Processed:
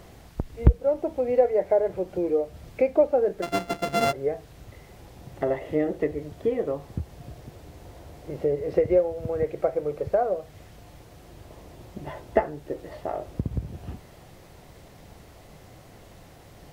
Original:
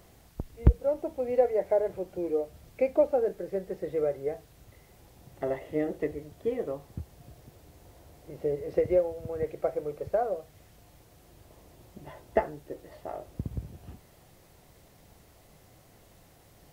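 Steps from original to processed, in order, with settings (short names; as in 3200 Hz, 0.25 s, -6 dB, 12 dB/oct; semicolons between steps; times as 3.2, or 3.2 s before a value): 3.42–4.13 sample sorter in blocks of 64 samples; high shelf 7200 Hz -9.5 dB; in parallel at +2 dB: compressor, threshold -36 dBFS, peak gain reduction 21.5 dB; on the sum: gain +2 dB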